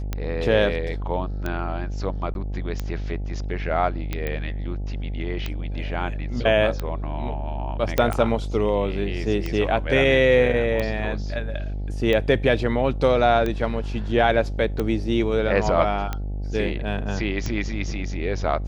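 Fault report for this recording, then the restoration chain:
buzz 50 Hz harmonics 17 -28 dBFS
tick 45 rpm -13 dBFS
2.34–2.35 s: dropout 11 ms
4.27 s: pop -15 dBFS
7.98 s: pop -6 dBFS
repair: de-click; de-hum 50 Hz, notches 17; interpolate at 2.34 s, 11 ms

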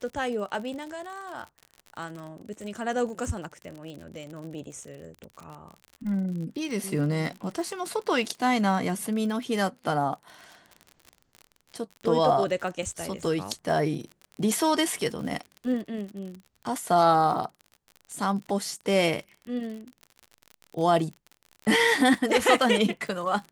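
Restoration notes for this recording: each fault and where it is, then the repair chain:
crackle 49 per s -35 dBFS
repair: de-click

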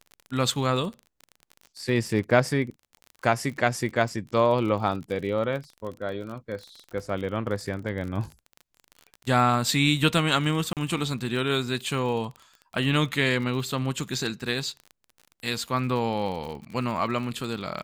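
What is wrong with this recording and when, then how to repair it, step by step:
crackle 41 per s -33 dBFS
10.73–10.77 s: dropout 38 ms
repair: de-click; interpolate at 10.73 s, 38 ms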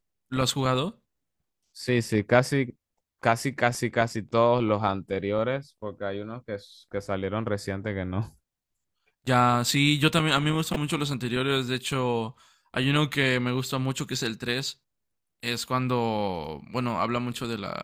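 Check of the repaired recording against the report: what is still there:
nothing left

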